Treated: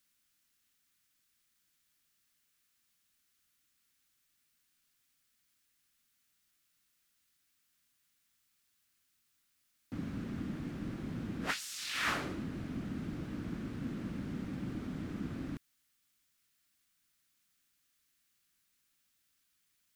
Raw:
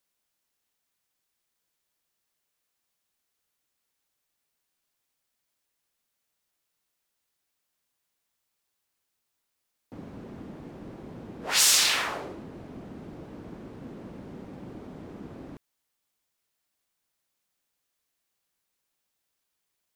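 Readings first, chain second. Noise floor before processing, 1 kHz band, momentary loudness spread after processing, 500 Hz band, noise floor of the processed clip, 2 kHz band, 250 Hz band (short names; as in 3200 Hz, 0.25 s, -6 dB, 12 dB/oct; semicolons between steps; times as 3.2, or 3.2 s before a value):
-81 dBFS, -6.5 dB, 7 LU, -6.0 dB, -77 dBFS, -7.0 dB, +3.0 dB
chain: band shelf 620 Hz -10.5 dB; negative-ratio compressor -34 dBFS, ratio -1; gain -1.5 dB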